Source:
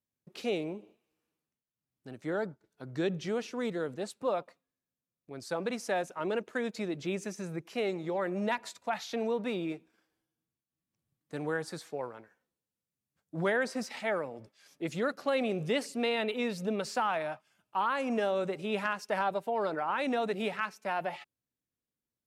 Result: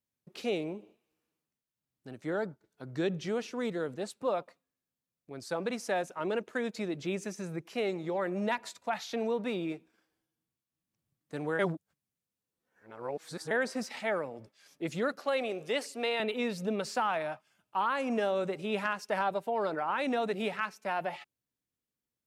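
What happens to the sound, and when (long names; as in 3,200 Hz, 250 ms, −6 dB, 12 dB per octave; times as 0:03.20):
0:11.59–0:13.51: reverse
0:15.19–0:16.20: high-pass filter 370 Hz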